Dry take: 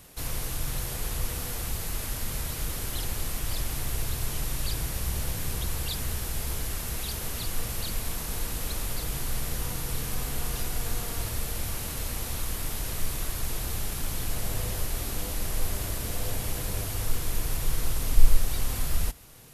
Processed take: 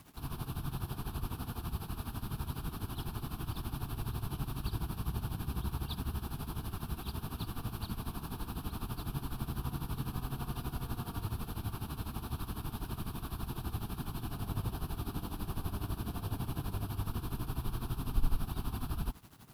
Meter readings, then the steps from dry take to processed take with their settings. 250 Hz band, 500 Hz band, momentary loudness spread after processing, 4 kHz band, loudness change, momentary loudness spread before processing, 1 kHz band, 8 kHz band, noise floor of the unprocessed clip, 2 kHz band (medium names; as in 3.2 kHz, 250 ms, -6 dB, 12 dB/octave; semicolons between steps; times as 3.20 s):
0.0 dB, -8.5 dB, 3 LU, -12.0 dB, -8.0 dB, 2 LU, -3.0 dB, -19.0 dB, -35 dBFS, -12.0 dB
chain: high-pass 220 Hz 6 dB/octave; tilt shelf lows +9.5 dB, about 1.3 kHz; static phaser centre 2 kHz, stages 6; flange 0.78 Hz, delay 6.6 ms, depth 8.5 ms, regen -81%; word length cut 10-bit, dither none; tremolo 12 Hz, depth 78%; trim +4.5 dB